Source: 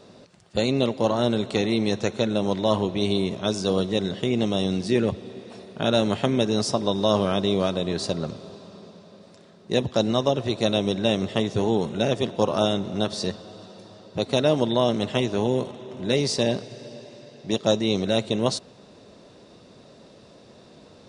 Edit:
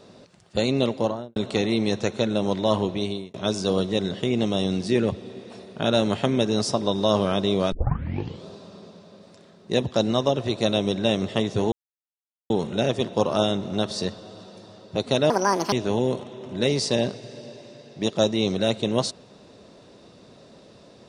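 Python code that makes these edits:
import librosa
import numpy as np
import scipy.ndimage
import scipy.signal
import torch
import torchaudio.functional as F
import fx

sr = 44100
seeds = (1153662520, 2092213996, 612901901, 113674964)

y = fx.studio_fade_out(x, sr, start_s=0.94, length_s=0.42)
y = fx.edit(y, sr, fx.fade_out_span(start_s=2.9, length_s=0.44),
    fx.tape_start(start_s=7.72, length_s=0.74),
    fx.insert_silence(at_s=11.72, length_s=0.78),
    fx.speed_span(start_s=14.52, length_s=0.68, speed=1.61), tone=tone)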